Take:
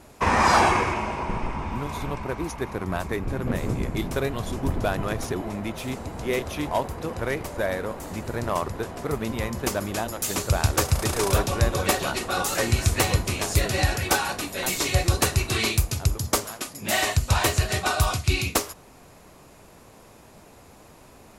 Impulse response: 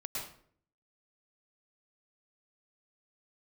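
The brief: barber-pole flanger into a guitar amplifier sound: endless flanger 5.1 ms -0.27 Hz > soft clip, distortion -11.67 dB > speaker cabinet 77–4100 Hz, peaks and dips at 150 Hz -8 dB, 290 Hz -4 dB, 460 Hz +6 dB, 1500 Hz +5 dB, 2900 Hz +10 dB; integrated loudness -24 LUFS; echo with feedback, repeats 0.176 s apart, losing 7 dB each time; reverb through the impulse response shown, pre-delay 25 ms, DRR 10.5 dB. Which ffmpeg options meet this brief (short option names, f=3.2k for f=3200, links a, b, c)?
-filter_complex "[0:a]aecho=1:1:176|352|528|704|880:0.447|0.201|0.0905|0.0407|0.0183,asplit=2[a][b];[1:a]atrim=start_sample=2205,adelay=25[c];[b][c]afir=irnorm=-1:irlink=0,volume=-12dB[d];[a][d]amix=inputs=2:normalize=0,asplit=2[e][f];[f]adelay=5.1,afreqshift=-0.27[g];[e][g]amix=inputs=2:normalize=1,asoftclip=threshold=-21.5dB,highpass=77,equalizer=f=150:t=q:w=4:g=-8,equalizer=f=290:t=q:w=4:g=-4,equalizer=f=460:t=q:w=4:g=6,equalizer=f=1.5k:t=q:w=4:g=5,equalizer=f=2.9k:t=q:w=4:g=10,lowpass=f=4.1k:w=0.5412,lowpass=f=4.1k:w=1.3066,volume=5dB"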